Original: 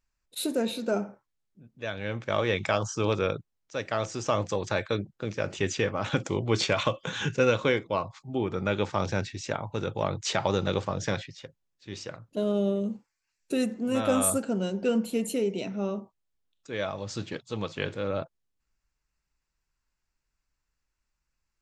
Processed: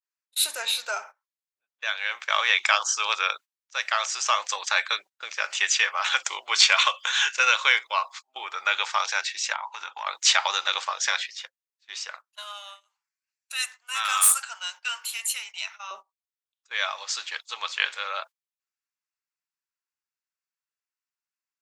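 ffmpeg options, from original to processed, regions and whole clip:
-filter_complex "[0:a]asettb=1/sr,asplit=3[s0][s1][s2];[s0]atrim=end=9.534[s3];[s1]atrim=start=9.53:end=10.07,asetpts=PTS-STARTPTS,afade=t=in:d=0.004:c=qsin,afade=t=out:st=0.536:d=0.004:c=qsin,acompressor=threshold=0.0316:ratio=10:attack=3.2:release=140:knee=1:detection=peak,highpass=150,equalizer=f=220:t=q:w=4:g=8,equalizer=f=500:t=q:w=4:g=-9,equalizer=f=940:t=q:w=4:g=8,equalizer=f=3800:t=q:w=4:g=-4,lowpass=f=7100:w=0.5412,lowpass=f=7100:w=1.3066[s4];[s2]atrim=start=10.066[s5];[s3][s4]acrossfade=d=0.004:c1=hsin:c2=qsin[s6];[s6][s5]acrossfade=d=0.004:c1=qsin:c2=hsin,asettb=1/sr,asplit=3[s7][s8][s9];[s7]atrim=end=12.274[s10];[s8]atrim=start=12.27:end=15.91,asetpts=PTS-STARTPTS,afade=t=in:d=0.004:c=qsin,afade=t=out:st=3.636:d=0.004:c=qsin,highpass=f=900:w=0.5412,highpass=f=900:w=1.3066,asoftclip=type=hard:threshold=0.0501[s11];[s9]atrim=start=15.906[s12];[s10][s11]acrossfade=d=0.004:c1=hsin:c2=qsin[s13];[s13][s12]acrossfade=d=0.004:c1=qsin:c2=hsin,highpass=f=950:w=0.5412,highpass=f=950:w=1.3066,agate=range=0.141:threshold=0.00282:ratio=16:detection=peak,adynamicequalizer=threshold=0.00562:dfrequency=1600:dqfactor=0.7:tfrequency=1600:tqfactor=0.7:attack=5:release=100:ratio=0.375:range=2.5:mode=boostabove:tftype=highshelf,volume=2.37"

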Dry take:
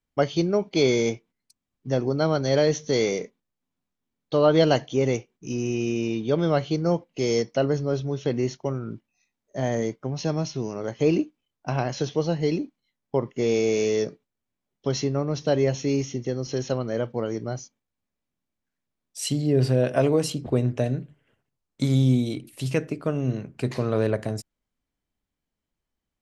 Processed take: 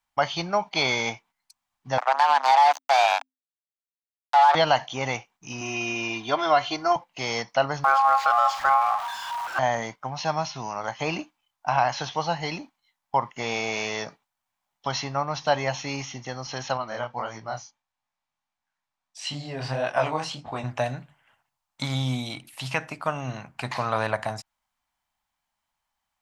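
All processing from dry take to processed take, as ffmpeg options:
-filter_complex "[0:a]asettb=1/sr,asplit=3[s0][s1][s2];[s0]atrim=end=1.984[s3];[s1]atrim=start=1.98:end=4.55,asetpts=PTS-STARTPTS,afade=t=in:d=0.004:c=qsin,afade=t=out:st=2.566:d=0.004:c=qsin,lowshelf=f=250:g=-10,acrusher=bits=3:mix=0:aa=0.5,afreqshift=260[s4];[s2]atrim=start=4.546[s5];[s3][s4]acrossfade=d=0.004:c1=hsin:c2=qsin[s6];[s6][s5]acrossfade=d=0.004:c1=qsin:c2=hsin,asettb=1/sr,asplit=3[s7][s8][s9];[s7]atrim=end=5.614[s10];[s8]atrim=start=5.61:end=6.96,asetpts=PTS-STARTPTS,afade=t=in:d=0.004:c=qsin,afade=t=out:st=1.346:d=0.004:c=qsin,lowshelf=f=66:g=-8.5,aecho=1:1:2.9:0.97,atrim=end_sample=59535[s11];[s9]atrim=start=6.956[s12];[s10][s11]acrossfade=d=0.004:c1=hsin:c2=qsin[s13];[s13][s12]acrossfade=d=0.004:c1=qsin:c2=hsin,asettb=1/sr,asplit=3[s14][s15][s16];[s14]atrim=end=7.844[s17];[s15]atrim=start=7.84:end=9.59,asetpts=PTS-STARTPTS,afade=t=in:d=0.004:c=qsin,afade=t=out:st=1.746:d=0.004:c=qsin,aeval=exprs='val(0)+0.5*0.0251*sgn(val(0))':c=same,aeval=exprs='val(0)*sin(2*PI*950*n/s)':c=same[s18];[s16]atrim=start=9.586[s19];[s17][s18]acrossfade=d=0.004:c1=hsin:c2=qsin[s20];[s20][s19]acrossfade=d=0.004:c1=qsin:c2=hsin,asettb=1/sr,asplit=3[s21][s22][s23];[s21]atrim=end=16.774[s24];[s22]atrim=start=16.77:end=20.64,asetpts=PTS-STARTPTS,afade=t=in:d=0.004:c=qsin,afade=t=out:st=3.866:d=0.004:c=qsin,lowpass=7000,flanger=delay=18.5:depth=7.8:speed=1.6[s25];[s23]atrim=start=20.636[s26];[s24][s25]acrossfade=d=0.004:c1=hsin:c2=qsin[s27];[s27][s26]acrossfade=d=0.004:c1=qsin:c2=hsin,lowshelf=f=590:t=q:w=3:g=-12.5,acrossover=split=5000[s28][s29];[s29]acompressor=threshold=0.00224:ratio=4:attack=1:release=60[s30];[s28][s30]amix=inputs=2:normalize=0,alimiter=level_in=5.31:limit=0.891:release=50:level=0:latency=1,volume=0.376"

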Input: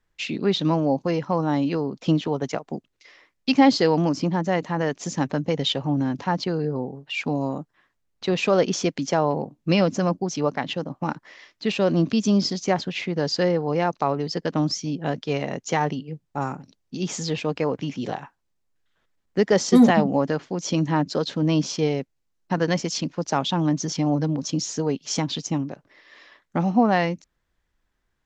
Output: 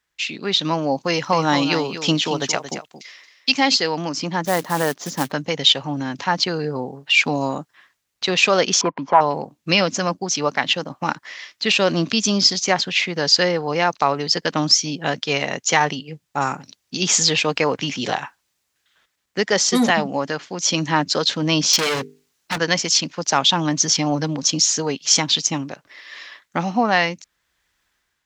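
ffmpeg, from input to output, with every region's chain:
-filter_complex "[0:a]asettb=1/sr,asplit=3[s0][s1][s2];[s0]atrim=end=1.104[s3];[s1]atrim=start=1.1:end=3.76,asetpts=PTS-STARTPTS,afade=t=in:d=0.004:c=qsin,afade=t=out:st=2.656:d=0.004:c=qsin,highshelf=f=4000:g=6.5,aecho=1:1:226:0.316,atrim=end_sample=117306[s4];[s2]atrim=start=3.756[s5];[s3][s4]acrossfade=d=0.004:c1=hsin:c2=qsin[s6];[s6][s5]acrossfade=d=0.004:c1=qsin:c2=hsin,asettb=1/sr,asplit=3[s7][s8][s9];[s7]atrim=end=4.454[s10];[s8]atrim=start=4.45:end=5.32,asetpts=PTS-STARTPTS,afade=t=in:d=0.004:c=qsin,afade=t=out:st=0.866:d=0.004:c=qsin,highpass=100,lowpass=3500,equalizer=f=2500:w=1.6:g=-13.5,acrusher=bits=5:mode=log:mix=0:aa=0.000001[s11];[s9]atrim=start=5.316[s12];[s10][s11]acrossfade=d=0.004:c1=hsin:c2=qsin[s13];[s13][s12]acrossfade=d=0.004:c1=qsin:c2=hsin,asettb=1/sr,asplit=3[s14][s15][s16];[s14]atrim=end=8.814[s17];[s15]atrim=start=8.81:end=9.21,asetpts=PTS-STARTPTS,afade=t=in:d=0.004:c=qsin,afade=t=out:st=0.396:d=0.004:c=qsin,aeval=exprs='0.224*(abs(mod(val(0)/0.224+3,4)-2)-1)':c=same,lowpass=f=1000:t=q:w=11[s18];[s16]atrim=start=9.206[s19];[s17][s18]acrossfade=d=0.004:c1=hsin:c2=qsin[s20];[s20][s19]acrossfade=d=0.004:c1=qsin:c2=hsin,asettb=1/sr,asplit=3[s21][s22][s23];[s21]atrim=end=21.734[s24];[s22]atrim=start=21.73:end=22.58,asetpts=PTS-STARTPTS,afade=t=in:d=0.004:c=qsin,afade=t=out:st=0.846:d=0.004:c=qsin,bandreject=f=50:t=h:w=6,bandreject=f=100:t=h:w=6,bandreject=f=150:t=h:w=6,bandreject=f=200:t=h:w=6,bandreject=f=250:t=h:w=6,bandreject=f=300:t=h:w=6,bandreject=f=350:t=h:w=6,bandreject=f=400:t=h:w=6,bandreject=f=450:t=h:w=6,acontrast=85,volume=15.8,asoftclip=hard,volume=0.0631[s25];[s23]atrim=start=22.576[s26];[s24][s25]acrossfade=d=0.004:c1=hsin:c2=qsin[s27];[s27][s26]acrossfade=d=0.004:c1=qsin:c2=hsin,highpass=46,tiltshelf=f=910:g=-8,dynaudnorm=f=170:g=7:m=3.76,volume=0.891"

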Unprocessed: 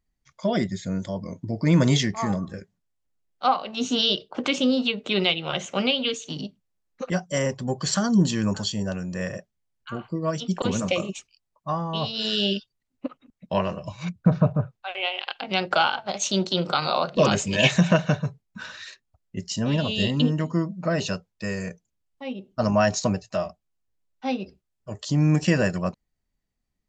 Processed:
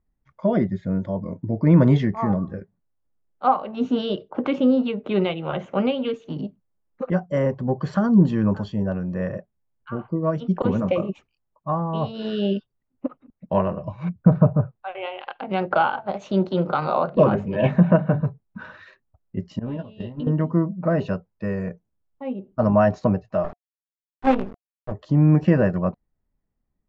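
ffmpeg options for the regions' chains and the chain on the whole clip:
-filter_complex "[0:a]asettb=1/sr,asplit=3[s0][s1][s2];[s0]atrim=end=17.244[s3];[s1]atrim=start=17.24:end=18.22,asetpts=PTS-STARTPTS,afade=t=in:d=0.004:c=qsin,afade=t=out:st=0.976:d=0.004:c=qsin,lowpass=f=1500:p=1,bandreject=f=50:t=h:w=6,bandreject=f=100:t=h:w=6,bandreject=f=150:t=h:w=6,bandreject=f=200:t=h:w=6,bandreject=f=250:t=h:w=6,bandreject=f=300:t=h:w=6[s4];[s2]atrim=start=18.216[s5];[s3][s4]acrossfade=d=0.004:c1=hsin:c2=qsin[s6];[s6][s5]acrossfade=d=0.004:c1=qsin:c2=hsin,asettb=1/sr,asplit=3[s7][s8][s9];[s7]atrim=end=19.594[s10];[s8]atrim=start=19.59:end=20.27,asetpts=PTS-STARTPTS,afade=t=in:d=0.004:c=qsin,afade=t=out:st=0.676:d=0.004:c=qsin,agate=range=0.112:threshold=0.0708:ratio=16:release=100:detection=peak,acompressor=threshold=0.0398:ratio=12:attack=3.2:release=140:knee=1:detection=peak,asplit=2[s11][s12];[s12]adelay=17,volume=0.447[s13];[s11][s13]amix=inputs=2:normalize=0,atrim=end_sample=29988[s14];[s9]atrim=start=20.266[s15];[s10][s14]acrossfade=d=0.004:c1=hsin:c2=qsin[s16];[s16][s15]acrossfade=d=0.004:c1=qsin:c2=hsin,asettb=1/sr,asplit=3[s17][s18][s19];[s17]atrim=end=23.444[s20];[s18]atrim=start=23.44:end=24.92,asetpts=PTS-STARTPTS,afade=t=in:d=0.004:c=qsin,afade=t=out:st=1.476:d=0.004:c=qsin,bandreject=f=50:t=h:w=6,bandreject=f=100:t=h:w=6,bandreject=f=150:t=h:w=6,bandreject=f=200:t=h:w=6,bandreject=f=250:t=h:w=6,bandreject=f=300:t=h:w=6,acontrast=53,acrusher=bits=4:dc=4:mix=0:aa=0.000001[s21];[s19]atrim=start=24.916[s22];[s20][s21]acrossfade=d=0.004:c1=hsin:c2=qsin[s23];[s23][s22]acrossfade=d=0.004:c1=qsin:c2=hsin,lowpass=1200,bandreject=f=710:w=23,volume=1.58"

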